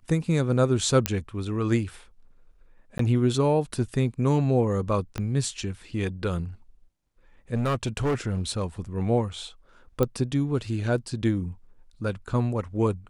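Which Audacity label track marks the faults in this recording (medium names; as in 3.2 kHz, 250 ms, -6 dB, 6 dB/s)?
1.060000	1.060000	pop -5 dBFS
2.980000	2.990000	dropout 13 ms
5.180000	5.180000	pop -16 dBFS
7.540000	8.640000	clipped -21 dBFS
10.030000	10.030000	pop -11 dBFS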